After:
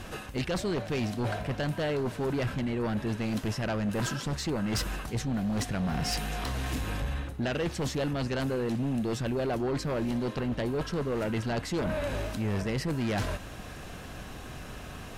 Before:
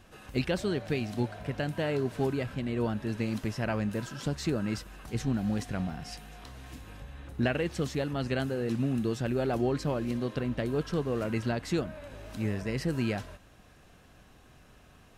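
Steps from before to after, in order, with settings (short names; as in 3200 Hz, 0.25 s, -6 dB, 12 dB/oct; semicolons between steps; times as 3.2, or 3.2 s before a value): reverse; compressor 12:1, threshold -38 dBFS, peak gain reduction 15.5 dB; reverse; sine folder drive 9 dB, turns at -27 dBFS; gain +2 dB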